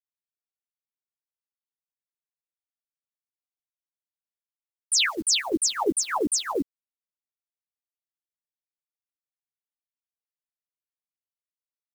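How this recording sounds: phasing stages 2, 0.37 Hz, lowest notch 520–2900 Hz; a quantiser's noise floor 8-bit, dither none; chopped level 2.9 Hz, depth 60%, duty 90%; a shimmering, thickened sound

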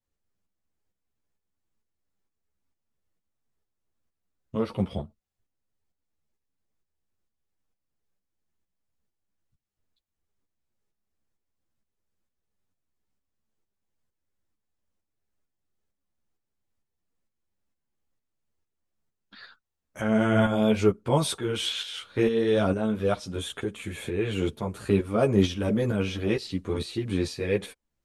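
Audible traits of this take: tremolo saw up 2.2 Hz, depth 60%; a shimmering, thickened sound

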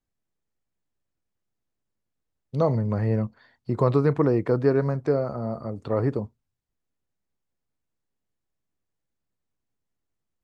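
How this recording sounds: noise floor -82 dBFS; spectral tilt -7.5 dB/oct

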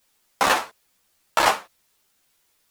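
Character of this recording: tremolo saw down 1.8 Hz, depth 40%; a quantiser's noise floor 12-bit, dither triangular; a shimmering, thickened sound

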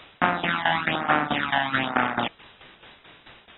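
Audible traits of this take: phasing stages 12, 1.1 Hz, lowest notch 400–4500 Hz; a quantiser's noise floor 8-bit, dither triangular; tremolo saw down 4.6 Hz, depth 85%; AAC

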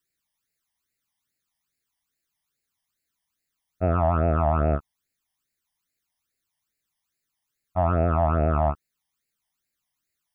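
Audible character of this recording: phasing stages 12, 2.4 Hz, lowest notch 420–1100 Hz

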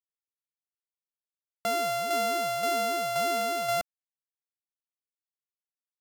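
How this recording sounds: a buzz of ramps at a fixed pitch in blocks of 64 samples; tremolo saw down 1.9 Hz, depth 45%; a quantiser's noise floor 12-bit, dither none; AAC

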